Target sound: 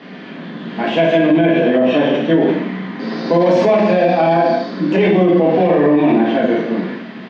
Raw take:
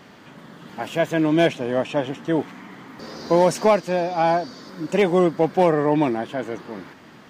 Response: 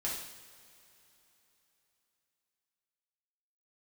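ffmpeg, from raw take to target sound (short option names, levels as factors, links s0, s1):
-filter_complex "[0:a]asettb=1/sr,asplit=3[s0][s1][s2];[s0]atrim=end=1.294[s3];[s1]atrim=start=1.29:end=1.86,asetpts=PTS-STARTPTS,afade=t=in:d=0.004:c=qsin,afade=t=out:st=0.566:d=0.004:c=qsin,acrossover=split=2600[s4][s5];[s5]acompressor=threshold=0.00501:ratio=4:attack=1:release=60[s6];[s4][s6]amix=inputs=2:normalize=0[s7];[s2]atrim=start=1.856[s8];[s3][s7]acrossfade=d=0.004:c1=hsin:c2=qsin[s9];[s9][s8]acrossfade=d=0.004:c1=qsin:c2=hsin,highpass=f=170:w=0.5412,highpass=f=170:w=1.3066,equalizer=f=210:t=q:w=4:g=8,equalizer=f=870:t=q:w=4:g=-6,equalizer=f=1300:t=q:w=4:g=-5,lowpass=f=4000:w=0.5412,lowpass=f=4000:w=1.3066,asplit=2[s10][s11];[s11]adelay=48,volume=0.266[s12];[s10][s12]amix=inputs=2:normalize=0[s13];[1:a]atrim=start_sample=2205,afade=t=out:st=0.36:d=0.01,atrim=end_sample=16317[s14];[s13][s14]afir=irnorm=-1:irlink=0,alimiter=level_in=5.01:limit=0.891:release=50:level=0:latency=1,volume=0.631"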